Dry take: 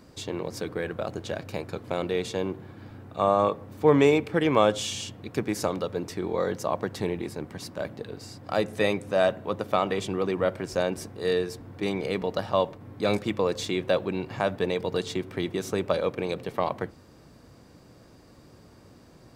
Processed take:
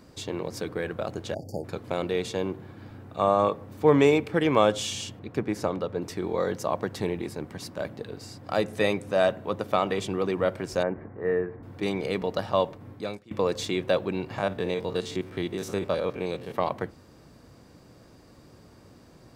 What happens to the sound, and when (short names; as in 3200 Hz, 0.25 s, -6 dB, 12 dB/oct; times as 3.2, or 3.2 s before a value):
1.34–1.64 spectral delete 870–4500 Hz
5.19–6.02 high shelf 3700 Hz -11 dB
10.83–11.63 elliptic low-pass 2000 Hz, stop band 70 dB
12.9–13.31 fade out quadratic, to -24 dB
14.38–16.54 stepped spectrum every 50 ms